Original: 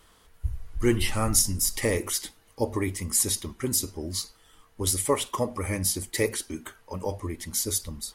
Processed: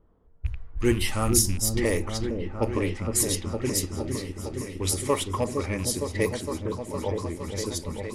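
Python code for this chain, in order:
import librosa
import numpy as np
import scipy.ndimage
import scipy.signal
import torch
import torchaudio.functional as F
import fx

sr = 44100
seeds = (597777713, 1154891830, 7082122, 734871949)

y = fx.rattle_buzz(x, sr, strikes_db=-27.0, level_db=-30.0)
y = fx.env_lowpass(y, sr, base_hz=490.0, full_db=-20.5)
y = fx.echo_opening(y, sr, ms=461, hz=400, octaves=1, feedback_pct=70, wet_db=-3)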